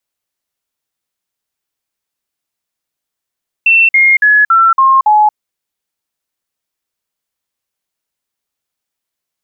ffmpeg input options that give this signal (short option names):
-f lavfi -i "aevalsrc='0.596*clip(min(mod(t,0.28),0.23-mod(t,0.28))/0.005,0,1)*sin(2*PI*2690*pow(2,-floor(t/0.28)/3)*mod(t,0.28))':d=1.68:s=44100"